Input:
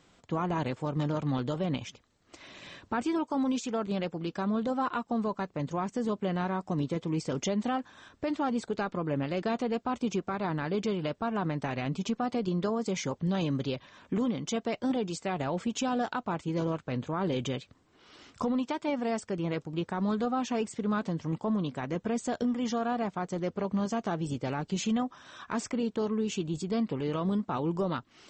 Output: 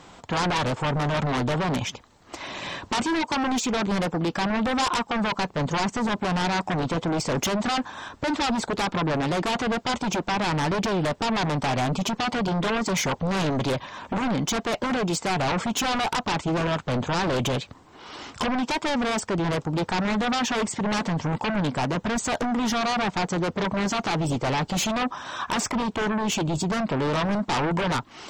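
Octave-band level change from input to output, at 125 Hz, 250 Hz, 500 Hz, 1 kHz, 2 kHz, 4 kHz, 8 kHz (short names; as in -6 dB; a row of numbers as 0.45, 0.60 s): +6.5, +4.0, +4.5, +8.5, +12.5, +13.0, +11.5 dB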